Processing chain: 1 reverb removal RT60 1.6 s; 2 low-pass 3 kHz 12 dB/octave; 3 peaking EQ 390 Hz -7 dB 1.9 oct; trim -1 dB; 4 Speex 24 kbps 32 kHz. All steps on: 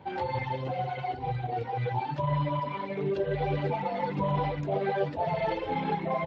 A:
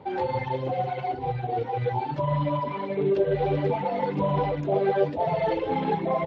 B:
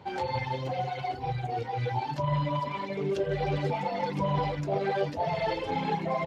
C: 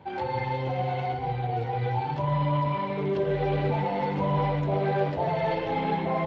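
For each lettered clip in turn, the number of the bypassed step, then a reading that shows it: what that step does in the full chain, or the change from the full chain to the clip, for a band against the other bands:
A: 3, 500 Hz band +4.0 dB; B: 2, 4 kHz band +4.0 dB; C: 1, loudness change +3.0 LU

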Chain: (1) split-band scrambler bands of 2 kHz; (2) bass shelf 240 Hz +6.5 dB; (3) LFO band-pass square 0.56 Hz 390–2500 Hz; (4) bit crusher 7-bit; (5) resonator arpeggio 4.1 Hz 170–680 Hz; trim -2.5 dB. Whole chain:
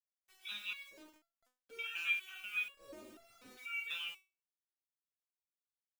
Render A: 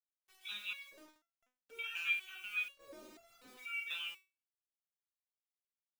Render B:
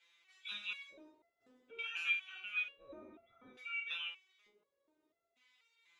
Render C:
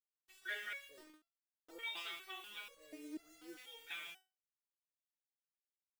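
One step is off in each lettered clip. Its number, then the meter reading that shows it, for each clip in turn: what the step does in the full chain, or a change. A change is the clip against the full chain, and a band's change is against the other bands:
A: 2, 250 Hz band -2.5 dB; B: 4, distortion -20 dB; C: 1, 250 Hz band +8.5 dB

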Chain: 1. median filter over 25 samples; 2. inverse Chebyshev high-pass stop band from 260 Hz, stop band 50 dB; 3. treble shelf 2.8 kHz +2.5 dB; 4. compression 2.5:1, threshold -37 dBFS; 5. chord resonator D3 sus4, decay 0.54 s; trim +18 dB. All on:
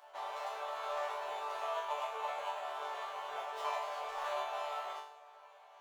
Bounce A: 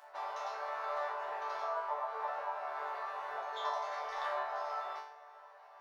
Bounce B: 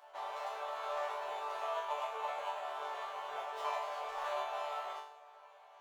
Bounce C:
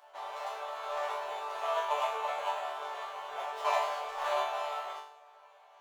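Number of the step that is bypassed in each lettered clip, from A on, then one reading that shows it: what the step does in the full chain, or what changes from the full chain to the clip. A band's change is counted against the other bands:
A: 1, 4 kHz band -5.0 dB; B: 3, 8 kHz band -1.5 dB; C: 4, loudness change +5.0 LU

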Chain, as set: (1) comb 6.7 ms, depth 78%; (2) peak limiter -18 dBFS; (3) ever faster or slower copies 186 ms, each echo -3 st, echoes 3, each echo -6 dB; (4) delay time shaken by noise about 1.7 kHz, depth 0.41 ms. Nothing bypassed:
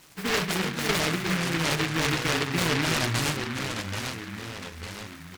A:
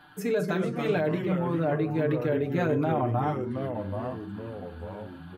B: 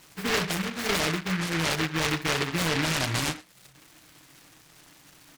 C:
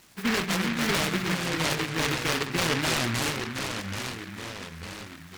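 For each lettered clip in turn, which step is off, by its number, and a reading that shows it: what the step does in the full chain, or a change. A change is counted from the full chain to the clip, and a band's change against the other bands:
4, 4 kHz band -20.0 dB; 3, momentary loudness spread change -10 LU; 1, 125 Hz band -2.0 dB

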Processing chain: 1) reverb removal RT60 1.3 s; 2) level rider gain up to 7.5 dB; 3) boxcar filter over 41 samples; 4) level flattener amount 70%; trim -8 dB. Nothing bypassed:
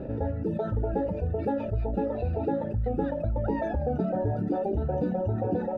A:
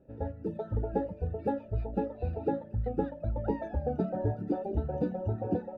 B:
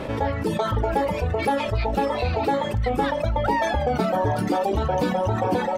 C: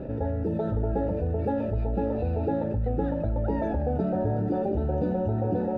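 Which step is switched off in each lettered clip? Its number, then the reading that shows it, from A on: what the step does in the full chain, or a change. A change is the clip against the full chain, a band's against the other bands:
4, crest factor change +3.5 dB; 3, 2 kHz band +12.0 dB; 1, 2 kHz band -2.0 dB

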